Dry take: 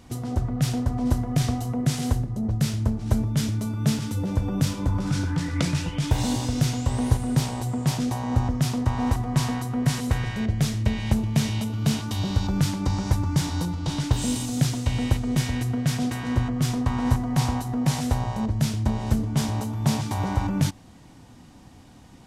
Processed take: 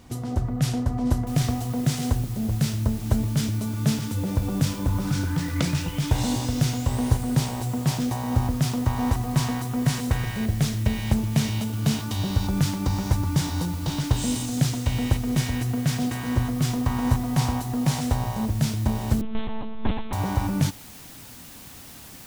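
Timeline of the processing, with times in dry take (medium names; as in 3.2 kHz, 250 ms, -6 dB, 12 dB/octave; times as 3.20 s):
1.27 s: noise floor step -69 dB -45 dB
19.21–20.13 s: monotone LPC vocoder at 8 kHz 220 Hz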